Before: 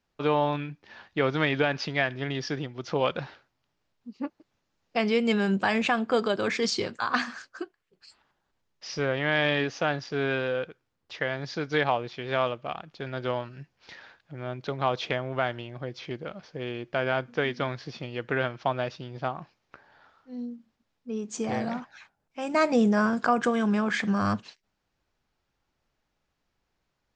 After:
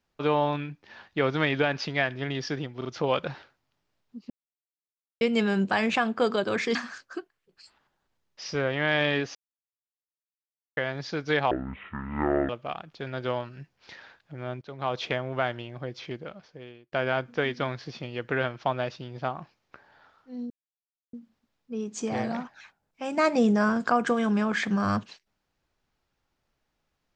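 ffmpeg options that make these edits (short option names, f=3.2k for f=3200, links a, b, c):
-filter_complex "[0:a]asplit=13[a][b][c][d][e][f][g][h][i][j][k][l][m];[a]atrim=end=2.812[n];[b]atrim=start=2.768:end=2.812[o];[c]atrim=start=2.768:end=4.22,asetpts=PTS-STARTPTS,afade=t=out:st=1.448:d=0.004:c=hsin[p];[d]atrim=start=4.22:end=5.13,asetpts=PTS-STARTPTS,volume=0[q];[e]atrim=start=5.13:end=6.672,asetpts=PTS-STARTPTS,afade=t=in:d=0.004:c=hsin[r];[f]atrim=start=7.188:end=9.79,asetpts=PTS-STARTPTS,afade=t=out:st=2.598:d=0.004:c=hsin[s];[g]atrim=start=9.79:end=11.21,asetpts=PTS-STARTPTS,volume=0[t];[h]atrim=start=11.21:end=11.954,asetpts=PTS-STARTPTS,afade=t=in:d=0.004:c=hsin[u];[i]atrim=start=11.95:end=12.49,asetpts=PTS-STARTPTS,asetrate=24255,aresample=44100,atrim=end_sample=43298,asetpts=PTS-STARTPTS[v];[j]atrim=start=12.486:end=14.61,asetpts=PTS-STARTPTS,afade=t=out:st=2.12:d=0.004:c=hsin:silence=0.149624[w];[k]atrim=start=14.61:end=16.92,asetpts=PTS-STARTPTS,afade=t=in:d=0.42:silence=0.149624,afade=t=out:st=1.42:d=0.89[x];[l]atrim=start=16.92:end=20.5,asetpts=PTS-STARTPTS,afade=t=in:d=0.004:c=hsin,afade=t=out:st=3.576:d=0.004:c=hsin,apad=pad_dur=0.63[y];[m]atrim=start=20.5,asetpts=PTS-STARTPTS,afade=t=in:d=0.004:c=hsin[z];[n][o]acrossfade=d=0.004:c1=hsin:c2=hsin[aa];[p][q][r]concat=n=3:v=0:a=1[ab];[aa][ab]acrossfade=d=0.004:c1=hsin:c2=hsin[ac];[s][t][u]concat=n=3:v=0:a=1[ad];[ac][ad]acrossfade=d=0.004:c1=hsin:c2=hsin[ae];[ae][v]acrossfade=d=0.004:c1=hsin:c2=hsin[af];[w][x][y][z]concat=n=4:v=0:a=1[ag];[af][ag]acrossfade=d=0.004:c1=hsin:c2=hsin"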